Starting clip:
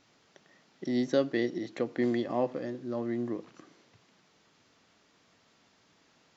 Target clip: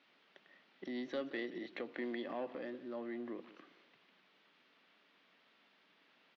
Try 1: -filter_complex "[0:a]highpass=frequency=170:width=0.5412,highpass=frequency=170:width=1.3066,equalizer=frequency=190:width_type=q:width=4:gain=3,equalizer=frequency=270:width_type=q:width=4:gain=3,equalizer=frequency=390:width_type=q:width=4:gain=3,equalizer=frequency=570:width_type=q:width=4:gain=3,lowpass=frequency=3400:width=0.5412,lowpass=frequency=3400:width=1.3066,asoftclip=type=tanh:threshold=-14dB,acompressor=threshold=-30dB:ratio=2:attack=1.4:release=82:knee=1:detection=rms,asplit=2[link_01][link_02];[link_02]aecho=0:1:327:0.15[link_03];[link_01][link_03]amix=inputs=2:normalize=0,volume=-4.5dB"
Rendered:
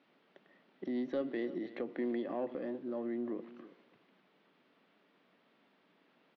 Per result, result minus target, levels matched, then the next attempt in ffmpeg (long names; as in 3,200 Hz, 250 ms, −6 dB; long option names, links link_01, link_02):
echo 151 ms late; 1,000 Hz band −3.0 dB
-filter_complex "[0:a]highpass=frequency=170:width=0.5412,highpass=frequency=170:width=1.3066,equalizer=frequency=190:width_type=q:width=4:gain=3,equalizer=frequency=270:width_type=q:width=4:gain=3,equalizer=frequency=390:width_type=q:width=4:gain=3,equalizer=frequency=570:width_type=q:width=4:gain=3,lowpass=frequency=3400:width=0.5412,lowpass=frequency=3400:width=1.3066,asoftclip=type=tanh:threshold=-14dB,acompressor=threshold=-30dB:ratio=2:attack=1.4:release=82:knee=1:detection=rms,asplit=2[link_01][link_02];[link_02]aecho=0:1:176:0.15[link_03];[link_01][link_03]amix=inputs=2:normalize=0,volume=-4.5dB"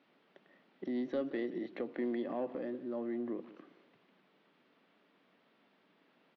1,000 Hz band −3.0 dB
-filter_complex "[0:a]highpass=frequency=170:width=0.5412,highpass=frequency=170:width=1.3066,equalizer=frequency=190:width_type=q:width=4:gain=3,equalizer=frequency=270:width_type=q:width=4:gain=3,equalizer=frequency=390:width_type=q:width=4:gain=3,equalizer=frequency=570:width_type=q:width=4:gain=3,lowpass=frequency=3400:width=0.5412,lowpass=frequency=3400:width=1.3066,asoftclip=type=tanh:threshold=-14dB,acompressor=threshold=-30dB:ratio=2:attack=1.4:release=82:knee=1:detection=rms,tiltshelf=frequency=1100:gain=-7,asplit=2[link_01][link_02];[link_02]aecho=0:1:176:0.15[link_03];[link_01][link_03]amix=inputs=2:normalize=0,volume=-4.5dB"